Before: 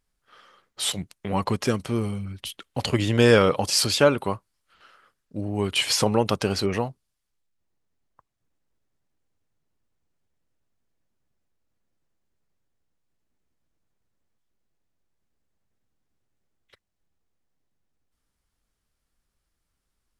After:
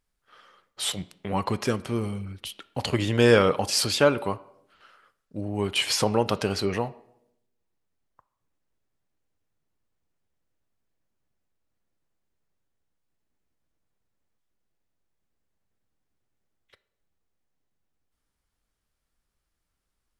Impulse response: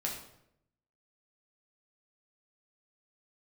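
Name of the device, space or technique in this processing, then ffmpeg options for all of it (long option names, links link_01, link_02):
filtered reverb send: -filter_complex "[0:a]asplit=2[link_01][link_02];[link_02]highpass=280,lowpass=4100[link_03];[1:a]atrim=start_sample=2205[link_04];[link_03][link_04]afir=irnorm=-1:irlink=0,volume=-14dB[link_05];[link_01][link_05]amix=inputs=2:normalize=0,volume=-2.5dB"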